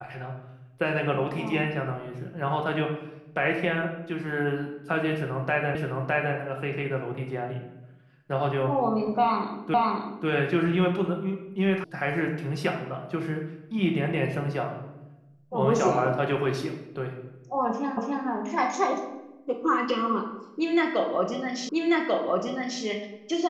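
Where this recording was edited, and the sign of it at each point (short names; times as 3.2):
5.75 repeat of the last 0.61 s
9.74 repeat of the last 0.54 s
11.84 sound cut off
17.97 repeat of the last 0.28 s
21.69 repeat of the last 1.14 s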